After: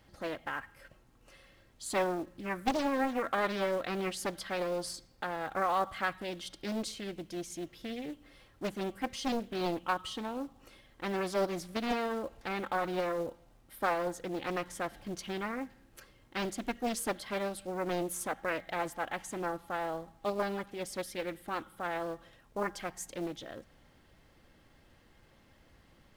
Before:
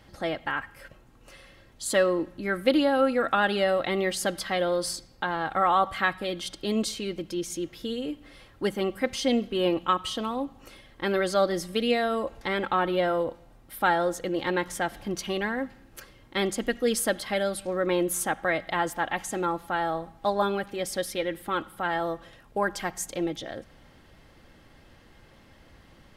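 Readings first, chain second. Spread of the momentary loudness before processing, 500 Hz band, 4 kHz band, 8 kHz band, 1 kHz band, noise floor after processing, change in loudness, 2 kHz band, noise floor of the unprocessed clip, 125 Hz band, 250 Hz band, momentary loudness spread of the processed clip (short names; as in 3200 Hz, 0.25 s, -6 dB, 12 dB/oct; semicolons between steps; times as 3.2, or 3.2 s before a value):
10 LU, -8.5 dB, -9.5 dB, -8.5 dB, -7.0 dB, -63 dBFS, -8.0 dB, -8.5 dB, -55 dBFS, -6.5 dB, -7.5 dB, 10 LU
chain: companded quantiser 6-bit; Doppler distortion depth 0.88 ms; gain -8 dB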